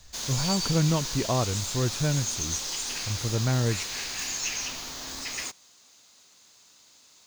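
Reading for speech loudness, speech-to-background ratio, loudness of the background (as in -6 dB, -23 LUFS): -28.5 LUFS, 2.0 dB, -30.5 LUFS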